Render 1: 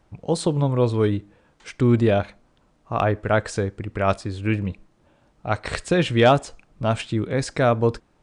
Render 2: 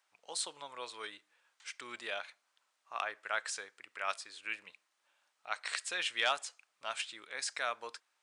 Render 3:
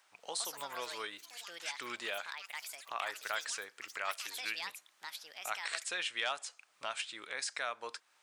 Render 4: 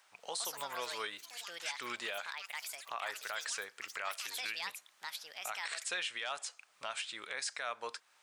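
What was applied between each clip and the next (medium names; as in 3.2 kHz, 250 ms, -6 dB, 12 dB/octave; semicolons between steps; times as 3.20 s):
high-pass 1.3 kHz 12 dB/octave; tilt EQ +1.5 dB/octave; trim -8 dB
compression 2:1, threshold -52 dBFS, peak gain reduction 14 dB; ever faster or slower copies 200 ms, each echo +6 st, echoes 3, each echo -6 dB; trim +9 dB
peak limiter -29 dBFS, peak gain reduction 9 dB; peaking EQ 310 Hz -4.5 dB 0.41 oct; trim +2 dB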